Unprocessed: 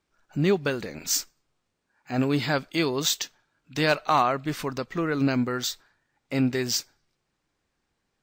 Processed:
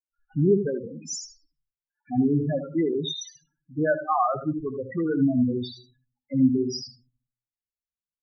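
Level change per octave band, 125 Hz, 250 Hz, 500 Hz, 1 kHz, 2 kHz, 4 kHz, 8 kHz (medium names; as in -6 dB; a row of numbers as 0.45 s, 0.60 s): +1.0 dB, +3.5 dB, +1.0 dB, -2.0 dB, -8.0 dB, -7.0 dB, -8.5 dB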